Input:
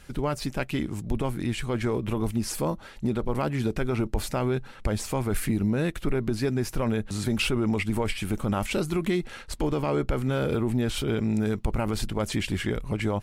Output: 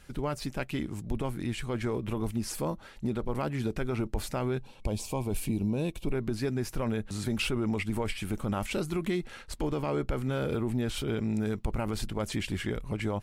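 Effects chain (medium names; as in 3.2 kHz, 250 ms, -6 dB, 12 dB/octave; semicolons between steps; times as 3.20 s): time-frequency box 4.62–6.12 s, 1.1–2.2 kHz -14 dB; trim -4.5 dB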